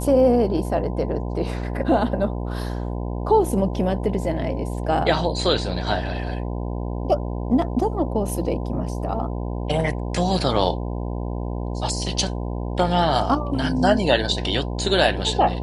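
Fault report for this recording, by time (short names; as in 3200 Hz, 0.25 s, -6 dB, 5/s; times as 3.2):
buzz 60 Hz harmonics 17 -27 dBFS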